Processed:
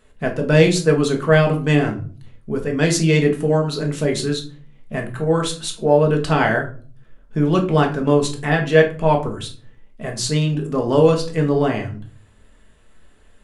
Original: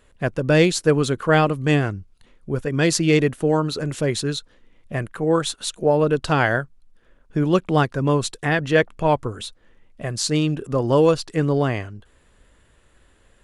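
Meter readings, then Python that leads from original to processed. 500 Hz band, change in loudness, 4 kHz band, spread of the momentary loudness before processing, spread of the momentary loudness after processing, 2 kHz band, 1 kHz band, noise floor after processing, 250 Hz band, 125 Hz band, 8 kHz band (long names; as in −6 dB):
+3.0 dB, +2.5 dB, +1.0 dB, 12 LU, 14 LU, +1.5 dB, +1.0 dB, −50 dBFS, +2.0 dB, +3.0 dB, +0.5 dB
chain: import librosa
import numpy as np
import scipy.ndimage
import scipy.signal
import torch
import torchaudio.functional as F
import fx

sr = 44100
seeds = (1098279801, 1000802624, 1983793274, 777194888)

y = fx.room_shoebox(x, sr, seeds[0], volume_m3=290.0, walls='furnished', distance_m=1.5)
y = y * librosa.db_to_amplitude(-1.0)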